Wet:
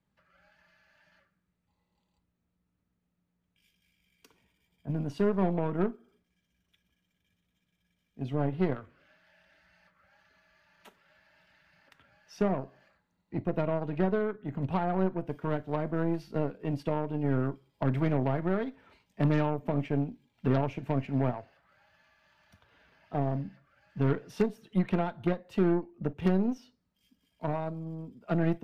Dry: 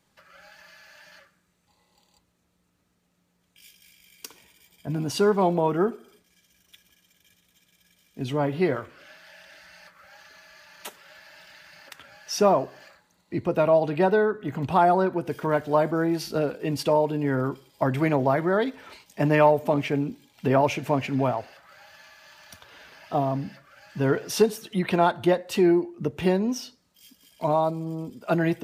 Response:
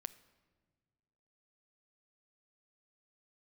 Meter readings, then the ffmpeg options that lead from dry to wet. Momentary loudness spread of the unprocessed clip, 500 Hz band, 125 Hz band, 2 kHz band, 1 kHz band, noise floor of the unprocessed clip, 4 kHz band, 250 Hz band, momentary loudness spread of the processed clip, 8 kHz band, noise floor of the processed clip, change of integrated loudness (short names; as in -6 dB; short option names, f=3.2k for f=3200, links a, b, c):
13 LU, -9.5 dB, -1.5 dB, -10.5 dB, -11.5 dB, -70 dBFS, -15.0 dB, -4.5 dB, 9 LU, under -20 dB, -80 dBFS, -7.0 dB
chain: -filter_complex "[0:a]acrossover=split=310[a][b];[b]acompressor=threshold=-21dB:ratio=6[c];[a][c]amix=inputs=2:normalize=0,bass=f=250:g=9,treble=f=4k:g=-11,aeval=exprs='0.422*(cos(1*acos(clip(val(0)/0.422,-1,1)))-cos(1*PI/2))+0.0299*(cos(6*acos(clip(val(0)/0.422,-1,1)))-cos(6*PI/2))+0.0299*(cos(7*acos(clip(val(0)/0.422,-1,1)))-cos(7*PI/2))+0.0133*(cos(8*acos(clip(val(0)/0.422,-1,1)))-cos(8*PI/2))':c=same[d];[1:a]atrim=start_sample=2205,atrim=end_sample=3969,asetrate=70560,aresample=44100[e];[d][e]afir=irnorm=-1:irlink=0"